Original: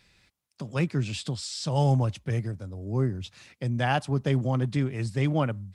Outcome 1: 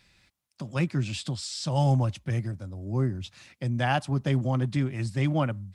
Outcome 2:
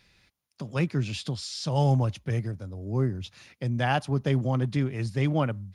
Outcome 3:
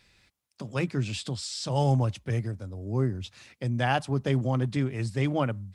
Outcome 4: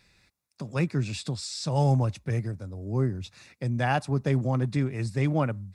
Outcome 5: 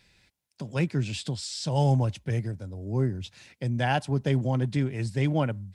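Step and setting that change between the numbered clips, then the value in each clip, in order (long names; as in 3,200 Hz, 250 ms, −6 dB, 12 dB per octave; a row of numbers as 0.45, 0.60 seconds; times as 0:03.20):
notch filter, centre frequency: 440, 7,900, 160, 3,100, 1,200 Hertz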